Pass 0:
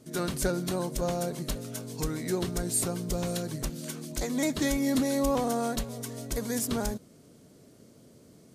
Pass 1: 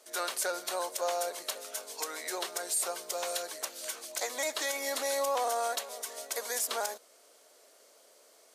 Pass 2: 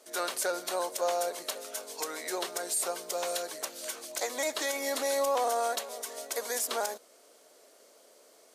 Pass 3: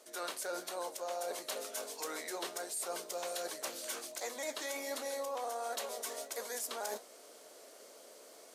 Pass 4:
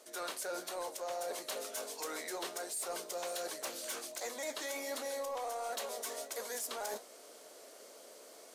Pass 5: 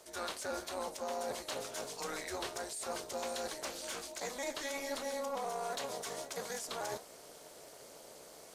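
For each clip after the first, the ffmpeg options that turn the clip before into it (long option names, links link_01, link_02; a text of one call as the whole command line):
ffmpeg -i in.wav -af "highpass=frequency=580:width=0.5412,highpass=frequency=580:width=1.3066,alimiter=level_in=0.5dB:limit=-24dB:level=0:latency=1:release=44,volume=-0.5dB,volume=3.5dB" out.wav
ffmpeg -i in.wav -af "lowshelf=frequency=370:gain=9.5" out.wav
ffmpeg -i in.wav -af "areverse,acompressor=threshold=-41dB:ratio=5,areverse,flanger=delay=8.7:depth=9.8:regen=-67:speed=1.4:shape=triangular,volume=7.5dB" out.wav
ffmpeg -i in.wav -af "asoftclip=type=tanh:threshold=-31.5dB,volume=1dB" out.wav
ffmpeg -i in.wav -filter_complex "[0:a]tremolo=f=290:d=0.71,acrossover=split=8300[link_01][link_02];[link_02]acompressor=threshold=-57dB:ratio=4:attack=1:release=60[link_03];[link_01][link_03]amix=inputs=2:normalize=0,volume=4dB" out.wav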